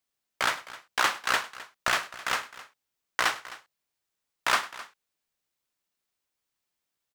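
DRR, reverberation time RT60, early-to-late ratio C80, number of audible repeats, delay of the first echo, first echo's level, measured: no reverb, no reverb, no reverb, 2, 102 ms, -19.0 dB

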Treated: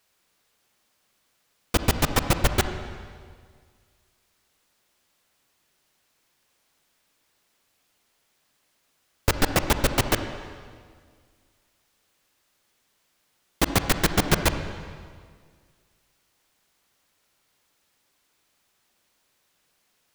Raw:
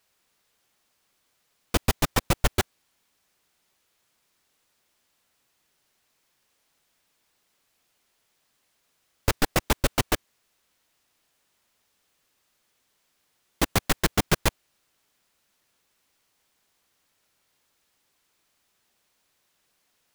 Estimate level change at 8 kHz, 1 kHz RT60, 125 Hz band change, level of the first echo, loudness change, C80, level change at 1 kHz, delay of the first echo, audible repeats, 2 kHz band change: +1.5 dB, 1.8 s, +2.5 dB, no echo, +1.5 dB, 9.5 dB, +2.0 dB, no echo, no echo, +2.0 dB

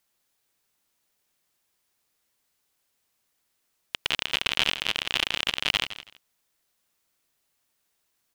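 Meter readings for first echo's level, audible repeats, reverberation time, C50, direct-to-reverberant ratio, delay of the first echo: -13.5 dB, 2, no reverb, no reverb, no reverb, 164 ms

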